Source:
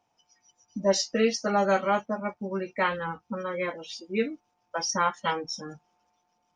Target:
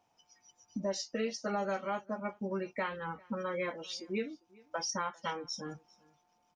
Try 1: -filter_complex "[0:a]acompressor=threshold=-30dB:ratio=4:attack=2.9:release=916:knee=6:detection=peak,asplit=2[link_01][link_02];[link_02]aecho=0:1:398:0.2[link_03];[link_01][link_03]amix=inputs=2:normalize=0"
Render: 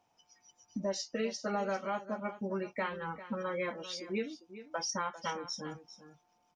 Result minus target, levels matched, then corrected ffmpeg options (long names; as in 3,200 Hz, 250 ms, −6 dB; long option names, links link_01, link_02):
echo-to-direct +11.5 dB
-filter_complex "[0:a]acompressor=threshold=-30dB:ratio=4:attack=2.9:release=916:knee=6:detection=peak,asplit=2[link_01][link_02];[link_02]aecho=0:1:398:0.0531[link_03];[link_01][link_03]amix=inputs=2:normalize=0"